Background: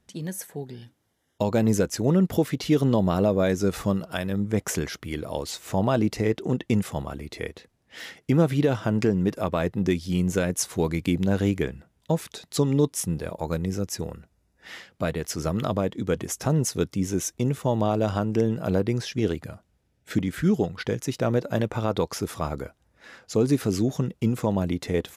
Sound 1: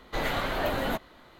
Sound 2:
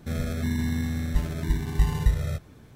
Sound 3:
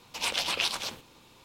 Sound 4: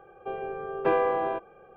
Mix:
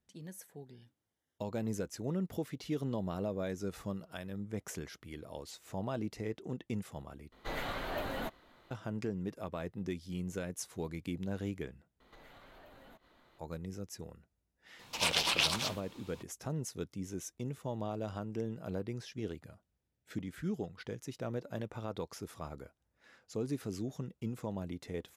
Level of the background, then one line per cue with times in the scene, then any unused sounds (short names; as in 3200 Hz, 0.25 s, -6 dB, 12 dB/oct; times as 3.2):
background -15 dB
7.32 replace with 1 -9 dB
12 replace with 1 -12 dB + compressor, threshold -43 dBFS
14.79 add 3 -1 dB
not used: 2, 4